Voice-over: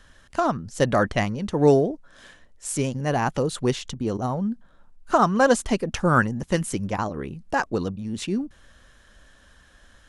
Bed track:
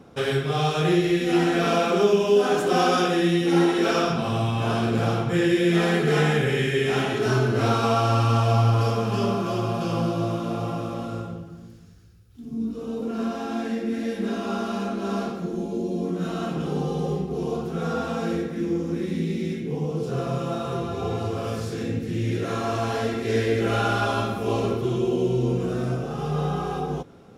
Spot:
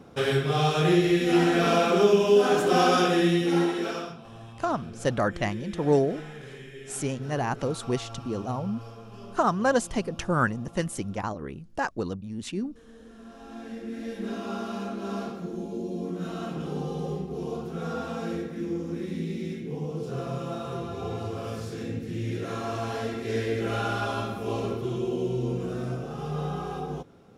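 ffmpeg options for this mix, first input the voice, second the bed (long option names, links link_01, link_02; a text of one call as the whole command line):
ffmpeg -i stem1.wav -i stem2.wav -filter_complex "[0:a]adelay=4250,volume=-5dB[link_01];[1:a]volume=14.5dB,afade=type=out:start_time=3.2:duration=0.99:silence=0.1,afade=type=in:start_time=13.24:duration=1.11:silence=0.177828[link_02];[link_01][link_02]amix=inputs=2:normalize=0" out.wav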